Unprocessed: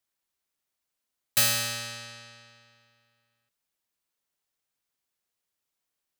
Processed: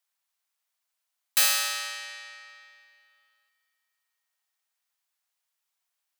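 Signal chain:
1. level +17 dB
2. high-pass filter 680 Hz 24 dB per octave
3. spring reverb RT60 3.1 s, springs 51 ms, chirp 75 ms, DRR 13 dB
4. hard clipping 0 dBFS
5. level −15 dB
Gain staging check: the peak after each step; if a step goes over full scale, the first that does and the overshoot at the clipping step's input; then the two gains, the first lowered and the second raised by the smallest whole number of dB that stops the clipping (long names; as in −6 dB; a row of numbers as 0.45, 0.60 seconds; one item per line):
+6.0, +6.0, +6.0, 0.0, −15.0 dBFS
step 1, 6.0 dB
step 1 +11 dB, step 5 −9 dB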